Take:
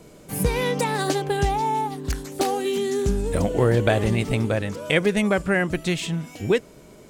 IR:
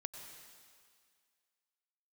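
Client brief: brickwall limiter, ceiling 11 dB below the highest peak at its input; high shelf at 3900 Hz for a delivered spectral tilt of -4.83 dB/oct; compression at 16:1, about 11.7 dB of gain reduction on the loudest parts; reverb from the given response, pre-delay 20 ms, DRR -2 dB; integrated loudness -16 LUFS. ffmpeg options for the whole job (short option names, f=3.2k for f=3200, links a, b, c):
-filter_complex "[0:a]highshelf=f=3.9k:g=4,acompressor=threshold=-26dB:ratio=16,alimiter=limit=-23dB:level=0:latency=1,asplit=2[a][b];[1:a]atrim=start_sample=2205,adelay=20[c];[b][c]afir=irnorm=-1:irlink=0,volume=4.5dB[d];[a][d]amix=inputs=2:normalize=0,volume=12.5dB"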